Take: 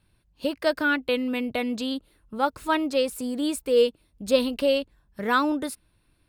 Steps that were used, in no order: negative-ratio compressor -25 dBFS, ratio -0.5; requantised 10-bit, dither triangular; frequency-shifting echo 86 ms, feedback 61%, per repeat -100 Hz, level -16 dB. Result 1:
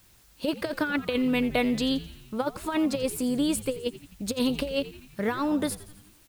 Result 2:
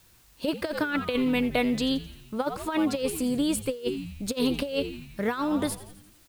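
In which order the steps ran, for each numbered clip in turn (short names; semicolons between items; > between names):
negative-ratio compressor > requantised > frequency-shifting echo; frequency-shifting echo > negative-ratio compressor > requantised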